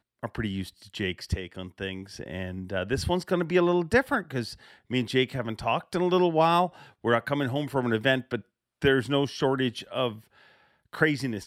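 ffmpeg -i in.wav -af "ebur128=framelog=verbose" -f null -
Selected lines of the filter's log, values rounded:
Integrated loudness:
  I:         -27.2 LUFS
  Threshold: -37.8 LUFS
Loudness range:
  LRA:         3.5 LU
  Threshold: -47.2 LUFS
  LRA low:   -29.3 LUFS
  LRA high:  -25.8 LUFS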